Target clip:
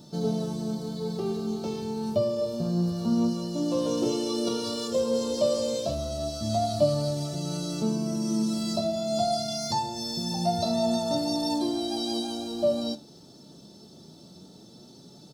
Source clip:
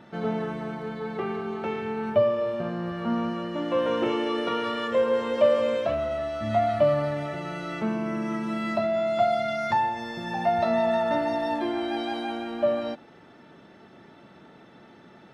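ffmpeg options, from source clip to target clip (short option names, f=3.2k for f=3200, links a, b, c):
-af "firequalizer=gain_entry='entry(150,0);entry(1900,-24);entry(4500,15)':delay=0.05:min_phase=1,flanger=delay=6.7:depth=8.1:regen=62:speed=0.26:shape=sinusoidal,equalizer=f=170:w=4.4:g=3.5,volume=7dB"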